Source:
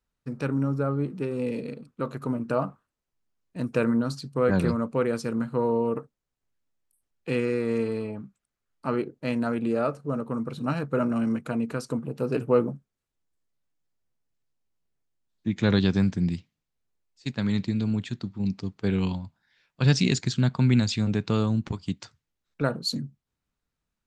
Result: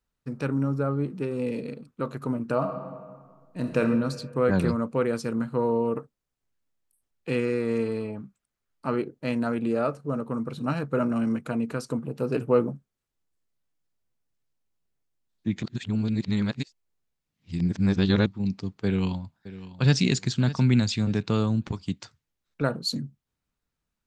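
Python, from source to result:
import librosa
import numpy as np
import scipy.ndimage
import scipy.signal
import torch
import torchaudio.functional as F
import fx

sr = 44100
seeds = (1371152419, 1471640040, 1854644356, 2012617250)

y = fx.reverb_throw(x, sr, start_s=2.56, length_s=1.24, rt60_s=1.7, drr_db=3.5)
y = fx.echo_throw(y, sr, start_s=18.85, length_s=1.17, ms=600, feedback_pct=25, wet_db=-15.5)
y = fx.edit(y, sr, fx.reverse_span(start_s=15.63, length_s=2.63), tone=tone)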